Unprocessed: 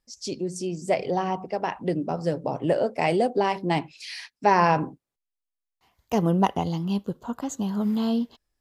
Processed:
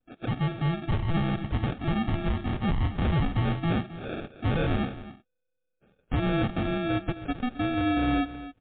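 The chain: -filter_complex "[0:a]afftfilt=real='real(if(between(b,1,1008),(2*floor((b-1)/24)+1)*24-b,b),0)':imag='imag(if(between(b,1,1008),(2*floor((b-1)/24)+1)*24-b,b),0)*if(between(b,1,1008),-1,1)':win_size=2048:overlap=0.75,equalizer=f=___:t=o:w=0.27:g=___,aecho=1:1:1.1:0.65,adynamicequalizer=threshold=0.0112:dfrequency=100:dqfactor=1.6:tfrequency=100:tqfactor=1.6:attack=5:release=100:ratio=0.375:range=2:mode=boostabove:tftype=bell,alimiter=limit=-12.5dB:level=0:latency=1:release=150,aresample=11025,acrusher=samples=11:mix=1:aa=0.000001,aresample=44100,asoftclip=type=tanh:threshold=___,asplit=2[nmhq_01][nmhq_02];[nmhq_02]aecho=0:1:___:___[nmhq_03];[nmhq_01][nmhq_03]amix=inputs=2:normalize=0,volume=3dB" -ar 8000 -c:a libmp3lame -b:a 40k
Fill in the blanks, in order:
650, -12, -23.5dB, 265, 0.188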